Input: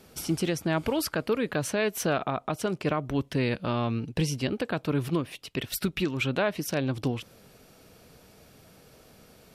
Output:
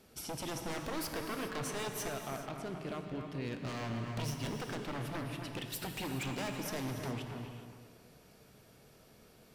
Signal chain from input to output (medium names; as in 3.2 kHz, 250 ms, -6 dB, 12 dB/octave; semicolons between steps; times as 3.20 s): 2.08–3.56 s: level held to a coarse grid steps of 16 dB; feedback comb 150 Hz, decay 1.6 s, mix 50%; wavefolder -32 dBFS; on a send: bucket-brigade echo 267 ms, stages 4096, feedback 31%, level -6.5 dB; on the sum: gated-style reverb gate 450 ms flat, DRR 5 dB; trim -2 dB